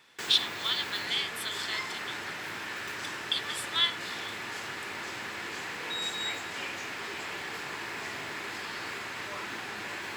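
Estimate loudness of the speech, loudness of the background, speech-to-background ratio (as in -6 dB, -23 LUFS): -30.0 LUFS, -36.0 LUFS, 6.0 dB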